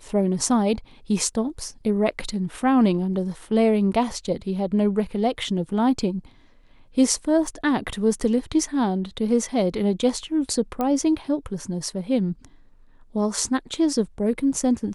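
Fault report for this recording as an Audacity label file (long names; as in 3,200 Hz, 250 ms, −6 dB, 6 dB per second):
7.470000	7.470000	drop-out 3.6 ms
10.810000	10.810000	click −13 dBFS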